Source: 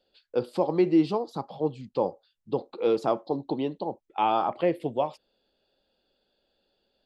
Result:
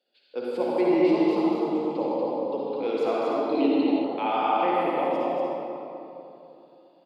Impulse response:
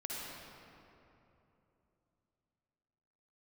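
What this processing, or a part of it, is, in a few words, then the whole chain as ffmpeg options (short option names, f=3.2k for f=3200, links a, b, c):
stadium PA: -filter_complex "[0:a]highpass=f=210:w=0.5412,highpass=f=210:w=1.3066,equalizer=f=2.2k:t=o:w=0.74:g=6.5,aecho=1:1:157.4|239.1:0.355|0.631[a];[1:a]atrim=start_sample=2205[b];[a][b]afir=irnorm=-1:irlink=0,asettb=1/sr,asplit=3[c][d][e];[c]atrim=end=3.524[f];[d]atrim=start=3.52:end=4.04,asetpts=PTS-STARTPTS,afade=t=in:d=0.004:c=qsin,afade=t=out:st=0.516:d=0.004:c=qsin,equalizer=f=315:t=o:w=0.33:g=10,equalizer=f=1.25k:t=o:w=0.33:g=-6,equalizer=f=2.5k:t=o:w=0.33:g=9,equalizer=f=4k:t=o:w=0.33:g=5[g];[e]atrim=start=4.036[h];[f][g]acrossfade=d=0.004:c1=hsin:c2=qsin[i];[i][h]acrossfade=d=0.004:c1=qsin:c2=hsin,volume=-1.5dB"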